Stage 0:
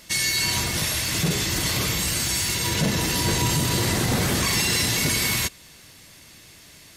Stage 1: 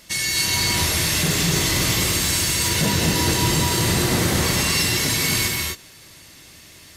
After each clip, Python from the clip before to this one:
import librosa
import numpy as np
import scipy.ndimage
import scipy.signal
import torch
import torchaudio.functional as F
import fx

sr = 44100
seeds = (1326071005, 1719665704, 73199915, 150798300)

y = fx.rider(x, sr, range_db=10, speed_s=0.5)
y = fx.rev_gated(y, sr, seeds[0], gate_ms=290, shape='rising', drr_db=-0.5)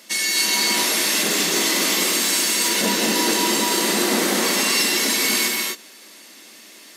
y = scipy.signal.sosfilt(scipy.signal.ellip(4, 1.0, 40, 210.0, 'highpass', fs=sr, output='sos'), x)
y = F.gain(torch.from_numpy(y), 2.5).numpy()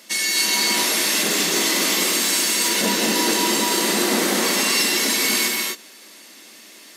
y = x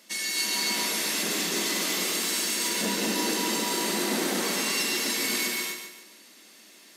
y = fx.low_shelf(x, sr, hz=110.0, db=9.5)
y = fx.echo_feedback(y, sr, ms=143, feedback_pct=39, wet_db=-7.5)
y = F.gain(torch.from_numpy(y), -9.0).numpy()